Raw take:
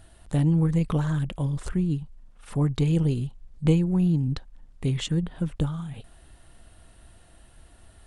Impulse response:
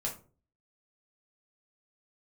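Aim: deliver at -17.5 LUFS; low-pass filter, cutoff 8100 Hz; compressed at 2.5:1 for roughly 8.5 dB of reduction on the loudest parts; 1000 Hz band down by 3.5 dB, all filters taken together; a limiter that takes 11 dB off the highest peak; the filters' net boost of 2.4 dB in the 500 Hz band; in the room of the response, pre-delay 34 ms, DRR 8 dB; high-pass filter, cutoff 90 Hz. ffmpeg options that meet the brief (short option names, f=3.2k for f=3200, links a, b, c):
-filter_complex "[0:a]highpass=90,lowpass=8.1k,equalizer=f=500:t=o:g=4,equalizer=f=1k:t=o:g=-6,acompressor=threshold=-28dB:ratio=2.5,alimiter=level_in=3.5dB:limit=-24dB:level=0:latency=1,volume=-3.5dB,asplit=2[a][b];[1:a]atrim=start_sample=2205,adelay=34[c];[b][c]afir=irnorm=-1:irlink=0,volume=-10.5dB[d];[a][d]amix=inputs=2:normalize=0,volume=17dB"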